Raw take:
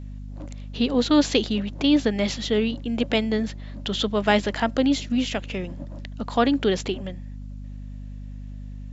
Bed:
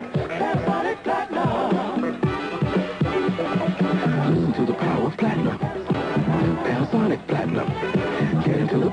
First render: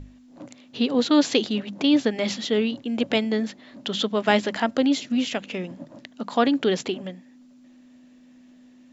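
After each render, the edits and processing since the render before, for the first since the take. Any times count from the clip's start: hum notches 50/100/150/200 Hz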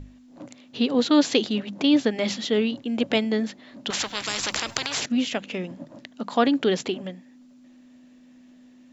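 3.90–5.06 s: spectrum-flattening compressor 10:1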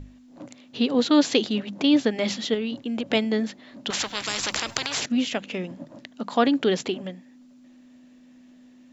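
2.54–3.08 s: compression 5:1, threshold -24 dBFS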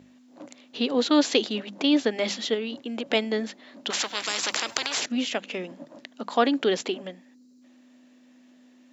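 high-pass 280 Hz 12 dB/octave; 7.34–7.62 s: time-frequency box 550–3800 Hz -14 dB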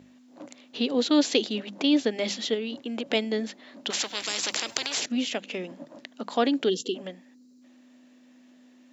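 6.69–6.95 s: time-frequency box 510–2700 Hz -24 dB; dynamic bell 1.2 kHz, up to -6 dB, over -39 dBFS, Q 0.83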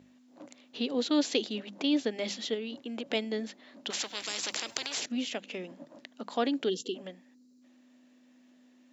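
trim -5.5 dB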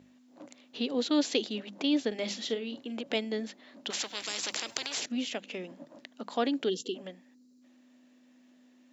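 2.07–3.01 s: doubling 44 ms -12.5 dB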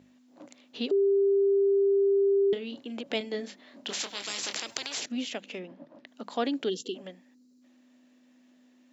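0.91–2.53 s: bleep 396 Hz -20 dBFS; 3.18–4.58 s: doubling 25 ms -7 dB; 5.59–6.07 s: distance through air 190 m

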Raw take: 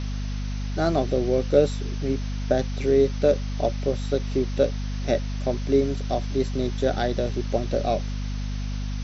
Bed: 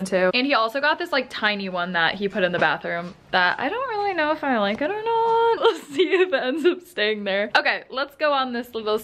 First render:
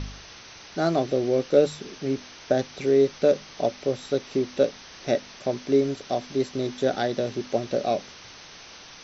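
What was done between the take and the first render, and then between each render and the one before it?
de-hum 50 Hz, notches 5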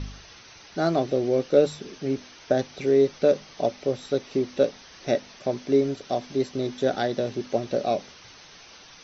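noise reduction 6 dB, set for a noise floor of -46 dBFS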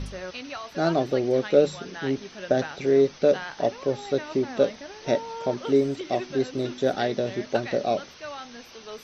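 add bed -17 dB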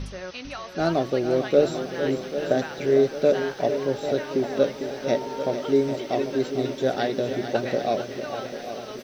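on a send: feedback delay 451 ms, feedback 45%, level -10 dB; on the sum: bit-crushed delay 793 ms, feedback 55%, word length 8-bit, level -11 dB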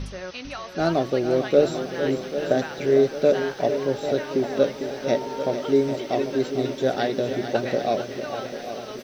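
trim +1 dB

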